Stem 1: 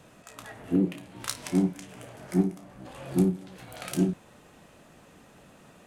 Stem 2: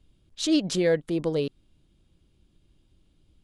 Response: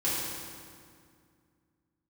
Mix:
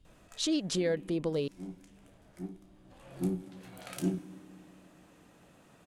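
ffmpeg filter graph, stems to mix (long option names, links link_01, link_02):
-filter_complex "[0:a]adelay=50,volume=3.5dB,afade=type=out:start_time=0.97:duration=0.2:silence=0.298538,afade=type=in:start_time=2.75:duration=0.78:silence=0.281838,asplit=2[link_01][link_02];[link_02]volume=-23dB[link_03];[1:a]acompressor=threshold=-28dB:ratio=2.5,volume=-1.5dB,asplit=2[link_04][link_05];[link_05]apad=whole_len=260737[link_06];[link_01][link_06]sidechaincompress=threshold=-51dB:ratio=8:attack=16:release=141[link_07];[2:a]atrim=start_sample=2205[link_08];[link_03][link_08]afir=irnorm=-1:irlink=0[link_09];[link_07][link_04][link_09]amix=inputs=3:normalize=0"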